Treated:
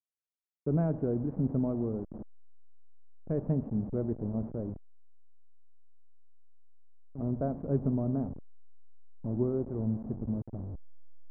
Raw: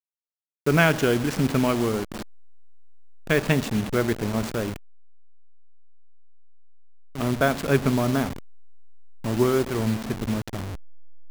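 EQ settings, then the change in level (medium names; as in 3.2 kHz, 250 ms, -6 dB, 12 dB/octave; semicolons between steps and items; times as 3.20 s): four-pole ladder low-pass 650 Hz, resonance 25%; peaking EQ 420 Hz -7 dB 0.96 oct; 0.0 dB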